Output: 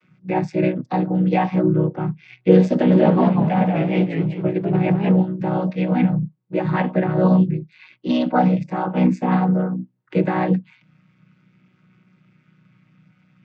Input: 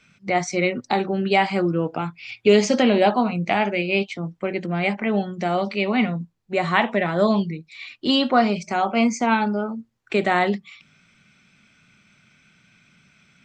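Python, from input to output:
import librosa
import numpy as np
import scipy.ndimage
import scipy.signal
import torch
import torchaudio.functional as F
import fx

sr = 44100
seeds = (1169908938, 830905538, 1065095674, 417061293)

y = fx.chord_vocoder(x, sr, chord='major triad', root=47)
y = fx.lowpass(y, sr, hz=3000.0, slope=6)
y = fx.echo_warbled(y, sr, ms=195, feedback_pct=35, rate_hz=2.8, cents=195, wet_db=-4.5, at=(2.73, 5.16))
y = y * 10.0 ** (3.5 / 20.0)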